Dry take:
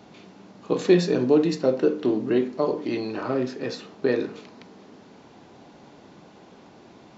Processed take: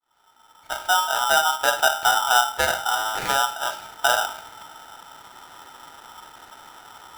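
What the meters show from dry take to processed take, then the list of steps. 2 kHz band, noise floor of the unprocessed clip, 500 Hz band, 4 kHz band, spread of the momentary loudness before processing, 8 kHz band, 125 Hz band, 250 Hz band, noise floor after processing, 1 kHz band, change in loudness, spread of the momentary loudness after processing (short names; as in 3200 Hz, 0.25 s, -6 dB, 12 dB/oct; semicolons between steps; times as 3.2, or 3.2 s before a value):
+15.5 dB, -51 dBFS, -6.5 dB, +15.0 dB, 10 LU, n/a, -14.5 dB, -23.0 dB, -57 dBFS, +16.5 dB, +3.0 dB, 11 LU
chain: opening faded in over 2.03 s; tone controls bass +11 dB, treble -14 dB; polarity switched at an audio rate 1100 Hz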